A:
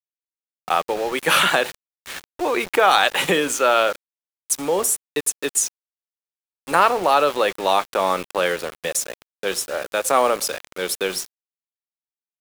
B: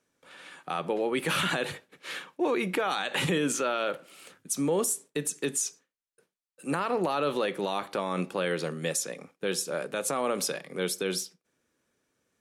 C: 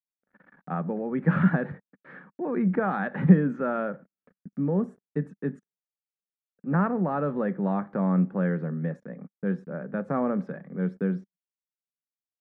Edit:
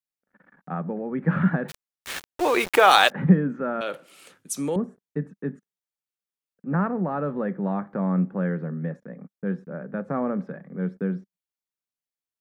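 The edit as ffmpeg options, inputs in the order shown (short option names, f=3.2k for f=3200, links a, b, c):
-filter_complex "[2:a]asplit=3[a][b][c];[a]atrim=end=1.72[d];[0:a]atrim=start=1.68:end=3.12[e];[b]atrim=start=3.08:end=3.812[f];[1:a]atrim=start=3.808:end=4.762[g];[c]atrim=start=4.758[h];[d][e]acrossfade=d=0.04:c1=tri:c2=tri[i];[i][f]acrossfade=d=0.04:c1=tri:c2=tri[j];[j][g]acrossfade=d=0.004:c1=hsin:c2=hsin[k];[k][h]acrossfade=d=0.004:c1=hsin:c2=hsin"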